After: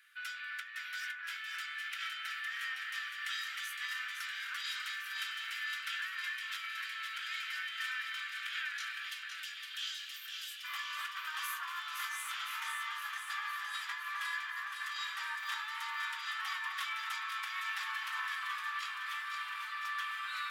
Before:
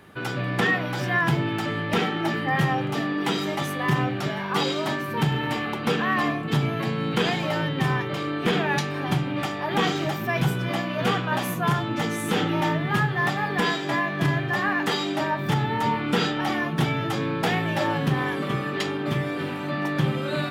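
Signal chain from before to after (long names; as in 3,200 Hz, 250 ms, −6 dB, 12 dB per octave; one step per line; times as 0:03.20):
Chebyshev high-pass filter 1,400 Hz, order 5, from 0:09.08 2,800 Hz, from 0:10.63 1,100 Hz
compressor whose output falls as the input rises −31 dBFS, ratio −0.5
delay that swaps between a low-pass and a high-pass 256 ms, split 2,200 Hz, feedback 84%, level −4 dB
level −9 dB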